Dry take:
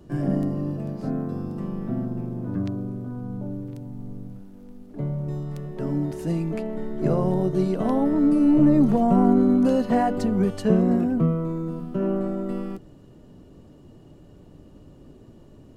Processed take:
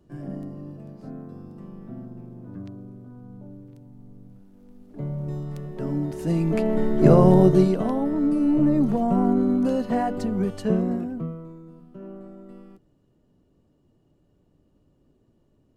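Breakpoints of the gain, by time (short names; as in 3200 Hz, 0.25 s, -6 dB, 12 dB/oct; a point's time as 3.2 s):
4.11 s -10.5 dB
5.26 s -1 dB
6.12 s -1 dB
6.72 s +8 dB
7.5 s +8 dB
7.93 s -3 dB
10.75 s -3 dB
11.63 s -15.5 dB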